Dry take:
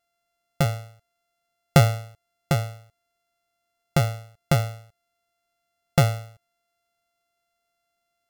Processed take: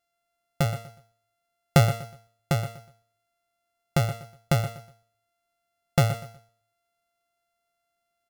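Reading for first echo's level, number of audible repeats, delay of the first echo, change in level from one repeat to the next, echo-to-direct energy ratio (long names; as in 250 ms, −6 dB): −13.0 dB, 2, 122 ms, −11.5 dB, −12.5 dB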